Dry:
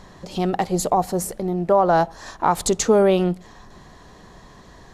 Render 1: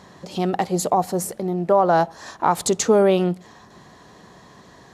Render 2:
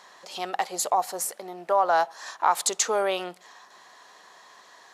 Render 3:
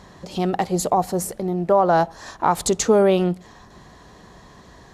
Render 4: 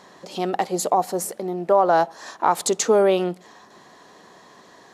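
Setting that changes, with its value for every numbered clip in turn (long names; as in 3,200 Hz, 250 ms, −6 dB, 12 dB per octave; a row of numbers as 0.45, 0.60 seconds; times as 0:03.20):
high-pass filter, corner frequency: 110, 840, 41, 290 Hertz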